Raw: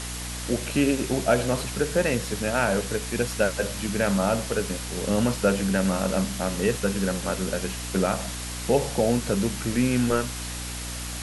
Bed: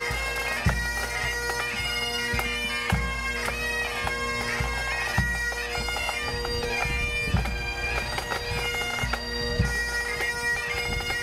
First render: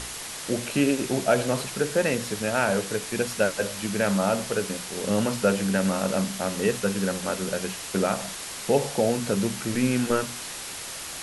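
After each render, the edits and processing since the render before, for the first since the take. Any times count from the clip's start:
mains-hum notches 60/120/180/240/300 Hz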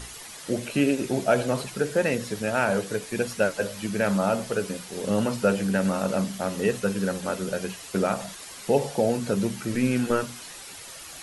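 broadband denoise 9 dB, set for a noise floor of −37 dBFS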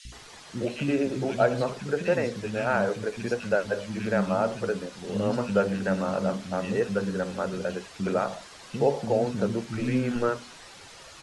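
high-frequency loss of the air 100 metres
three-band delay without the direct sound highs, lows, mids 50/120 ms, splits 250/2,400 Hz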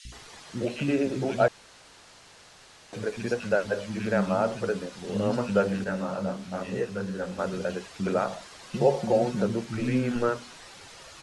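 0:01.48–0:02.93: fill with room tone
0:05.84–0:07.39: micro pitch shift up and down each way 44 cents
0:08.73–0:09.42: comb filter 5.5 ms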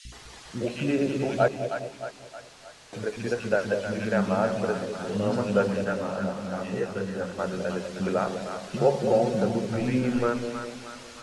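echo with a time of its own for lows and highs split 640 Hz, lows 202 ms, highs 312 ms, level −7 dB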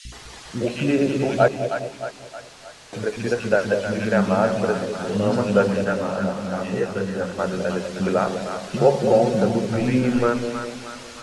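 level +5.5 dB

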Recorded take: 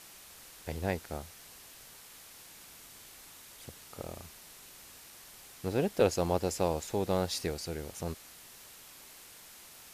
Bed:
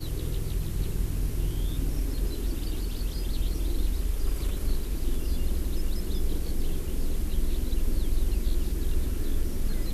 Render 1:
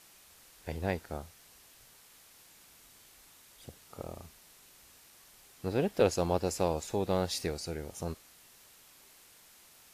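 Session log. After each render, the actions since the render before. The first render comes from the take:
noise reduction from a noise print 6 dB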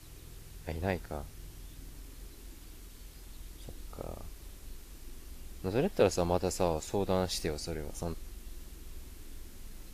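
mix in bed −20 dB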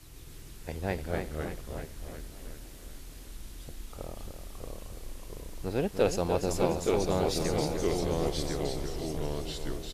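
repeating echo 297 ms, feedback 59%, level −8 dB
delay with pitch and tempo change per echo 138 ms, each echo −2 semitones, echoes 2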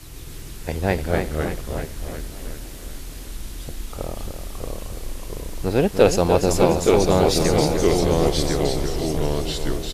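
level +11 dB
brickwall limiter −1 dBFS, peak gain reduction 1.5 dB

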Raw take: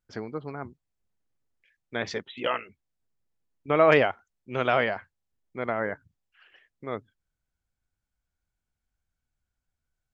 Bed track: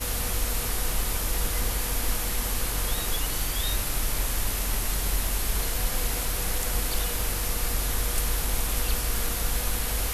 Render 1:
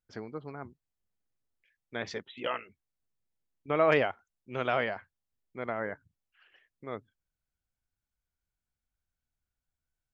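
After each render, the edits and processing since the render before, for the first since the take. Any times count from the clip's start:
level −5.5 dB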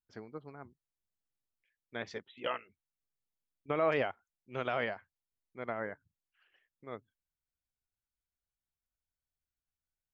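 brickwall limiter −18.5 dBFS, peak gain reduction 7.5 dB
expander for the loud parts 1.5 to 1, over −43 dBFS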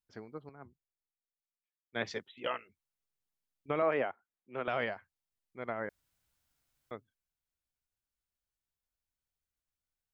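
0:00.49–0:02.32: multiband upward and downward expander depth 70%
0:03.82–0:04.68: three-way crossover with the lows and the highs turned down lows −13 dB, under 170 Hz, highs −19 dB, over 2,700 Hz
0:05.89–0:06.91: fill with room tone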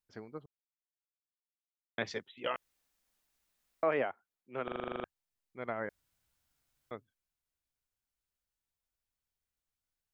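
0:00.46–0:01.98: silence
0:02.56–0:03.83: fill with room tone
0:04.64: stutter in place 0.04 s, 10 plays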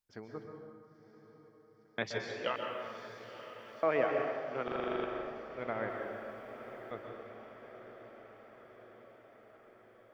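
feedback delay with all-pass diffusion 972 ms, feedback 63%, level −12 dB
dense smooth reverb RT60 1.9 s, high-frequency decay 0.6×, pre-delay 115 ms, DRR 2 dB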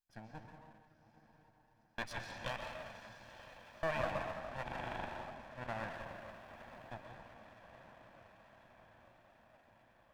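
lower of the sound and its delayed copy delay 1.2 ms
flanger 1.5 Hz, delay 2.1 ms, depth 9.5 ms, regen +77%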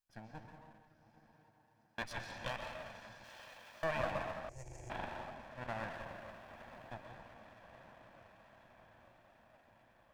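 0:01.32–0:02.02: high-pass filter 76 Hz
0:03.24–0:03.84: spectral tilt +2 dB per octave
0:04.49–0:04.90: drawn EQ curve 130 Hz 0 dB, 210 Hz −27 dB, 350 Hz −1 dB, 890 Hz −18 dB, 1,500 Hz −25 dB, 2,100 Hz −12 dB, 3,600 Hz −23 dB, 6,700 Hz +14 dB, 13,000 Hz −4 dB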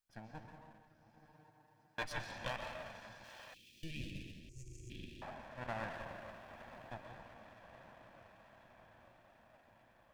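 0:01.19–0:02.22: comb filter 6.6 ms
0:03.54–0:05.22: elliptic band-stop filter 360–2,700 Hz, stop band 50 dB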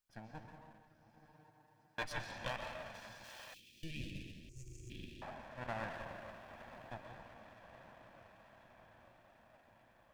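0:02.94–0:03.60: high-shelf EQ 4,400 Hz +8 dB
0:04.39–0:05.14: floating-point word with a short mantissa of 4 bits

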